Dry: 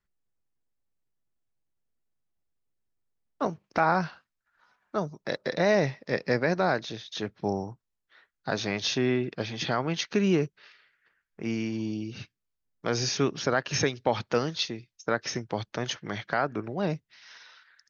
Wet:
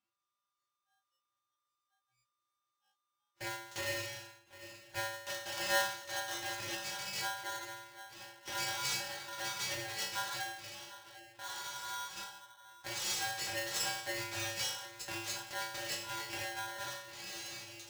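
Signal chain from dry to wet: spectral levelling over time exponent 0.6; hum 60 Hz, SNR 22 dB; peaking EQ 3.7 kHz +7 dB 1.1 oct; hum notches 50/100/150/200/250/300/350/400/450 Hz; inharmonic resonator 210 Hz, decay 0.72 s, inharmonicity 0.002; in parallel at +2 dB: compression, threshold -50 dBFS, peak gain reduction 24 dB; on the sum: treble shelf 5.1 kHz +11.5 dB; on a send: two-band feedback delay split 2.6 kHz, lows 748 ms, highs 94 ms, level -15.5 dB; on the sum: spectral noise reduction 25 dB; polarity switched at an audio rate 1.2 kHz; trim -3.5 dB

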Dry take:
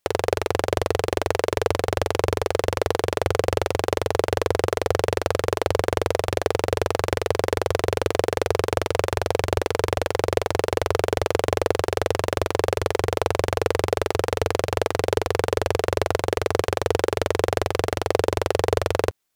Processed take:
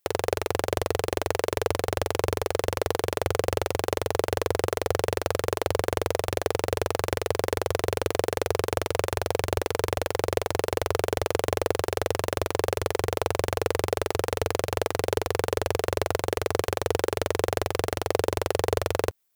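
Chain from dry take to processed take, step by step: treble shelf 11 kHz +12 dB; trim -4 dB

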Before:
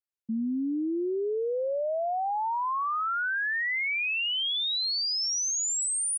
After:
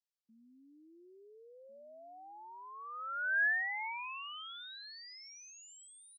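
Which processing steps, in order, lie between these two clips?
echo from a far wall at 240 m, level -11 dB; band-pass sweep 4.8 kHz -> 810 Hz, 2.71–3.93 s

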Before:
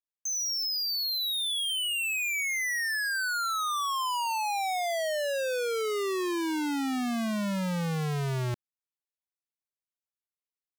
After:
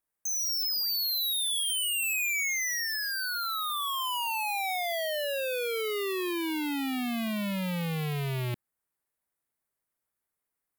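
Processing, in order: high-order bell 4.2 kHz -10 dB; sine folder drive 7 dB, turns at -26.5 dBFS

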